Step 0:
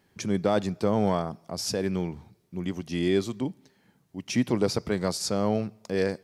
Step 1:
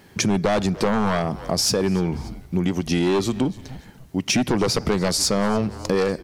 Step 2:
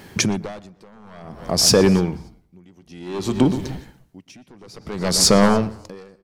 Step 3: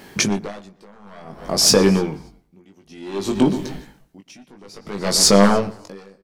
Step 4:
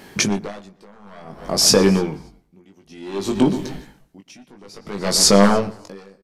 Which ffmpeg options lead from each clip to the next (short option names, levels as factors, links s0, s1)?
-filter_complex "[0:a]aeval=exprs='0.251*sin(PI/2*2.24*val(0)/0.251)':c=same,asplit=3[s0][s1][s2];[s1]adelay=290,afreqshift=-130,volume=0.0841[s3];[s2]adelay=580,afreqshift=-260,volume=0.026[s4];[s0][s3][s4]amix=inputs=3:normalize=0,acompressor=threshold=0.0708:ratio=6,volume=1.78"
-filter_complex "[0:a]asplit=2[s0][s1];[s1]adelay=120,lowpass=f=2000:p=1,volume=0.224,asplit=2[s2][s3];[s3]adelay=120,lowpass=f=2000:p=1,volume=0.48,asplit=2[s4][s5];[s5]adelay=120,lowpass=f=2000:p=1,volume=0.48,asplit=2[s6][s7];[s7]adelay=120,lowpass=f=2000:p=1,volume=0.48,asplit=2[s8][s9];[s9]adelay=120,lowpass=f=2000:p=1,volume=0.48[s10];[s0][s2][s4][s6][s8][s10]amix=inputs=6:normalize=0,aeval=exprs='val(0)*pow(10,-34*(0.5-0.5*cos(2*PI*0.56*n/s))/20)':c=same,volume=2.37"
-filter_complex "[0:a]equalizer=f=88:t=o:w=1.1:g=-10.5,asplit=2[s0][s1];[s1]adelay=20,volume=0.562[s2];[s0][s2]amix=inputs=2:normalize=0"
-af "aresample=32000,aresample=44100"